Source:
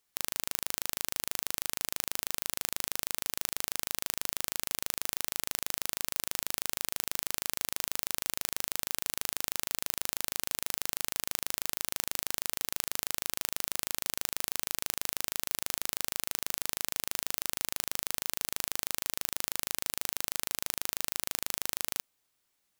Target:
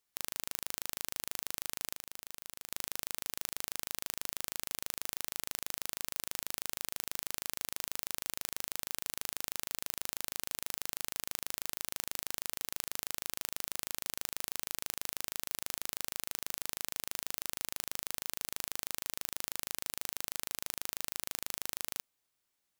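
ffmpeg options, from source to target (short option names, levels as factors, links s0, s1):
-filter_complex "[0:a]asettb=1/sr,asplit=3[s0][s1][s2];[s0]atrim=end=1.954[s3];[s1]atrim=start=1.95:end=2.7,asetpts=PTS-STARTPTS,afade=t=in:d=0.004:c=qsin,afade=t=out:st=0.746:d=0.004:c=qsin,acompressor=threshold=0.0126:ratio=2.5[s4];[s2]atrim=start=2.696[s5];[s3][s4]acrossfade=d=0.004:c1=hsin:c2=qsin[s6];[s6][s5]acrossfade=d=0.004:c1=qsin:c2=hsin,volume=0.562"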